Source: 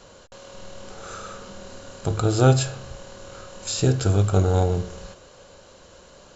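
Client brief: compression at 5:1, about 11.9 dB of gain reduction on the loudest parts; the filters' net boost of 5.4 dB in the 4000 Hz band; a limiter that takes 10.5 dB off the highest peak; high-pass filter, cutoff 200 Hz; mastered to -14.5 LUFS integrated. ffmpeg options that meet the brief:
-af "highpass=200,equalizer=f=4k:t=o:g=6.5,acompressor=threshold=-26dB:ratio=5,volume=22dB,alimiter=limit=-0.5dB:level=0:latency=1"

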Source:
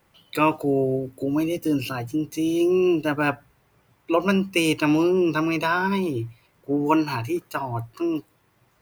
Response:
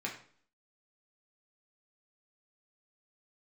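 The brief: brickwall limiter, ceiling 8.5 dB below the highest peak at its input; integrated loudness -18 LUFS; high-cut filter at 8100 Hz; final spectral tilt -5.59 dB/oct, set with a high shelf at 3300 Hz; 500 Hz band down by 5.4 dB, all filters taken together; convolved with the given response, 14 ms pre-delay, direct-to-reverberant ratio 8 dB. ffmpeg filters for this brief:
-filter_complex "[0:a]lowpass=8.1k,equalizer=f=500:t=o:g=-8.5,highshelf=f=3.3k:g=-4.5,alimiter=limit=-18.5dB:level=0:latency=1,asplit=2[a][b];[1:a]atrim=start_sample=2205,adelay=14[c];[b][c]afir=irnorm=-1:irlink=0,volume=-11dB[d];[a][d]amix=inputs=2:normalize=0,volume=9.5dB"

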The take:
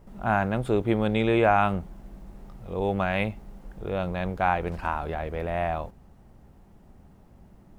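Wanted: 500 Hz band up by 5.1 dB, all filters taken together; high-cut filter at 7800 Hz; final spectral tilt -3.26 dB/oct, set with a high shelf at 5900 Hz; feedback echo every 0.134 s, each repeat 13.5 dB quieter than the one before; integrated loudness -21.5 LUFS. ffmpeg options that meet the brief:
-af "lowpass=7.8k,equalizer=f=500:t=o:g=6.5,highshelf=f=5.9k:g=-4.5,aecho=1:1:134|268:0.211|0.0444,volume=2dB"

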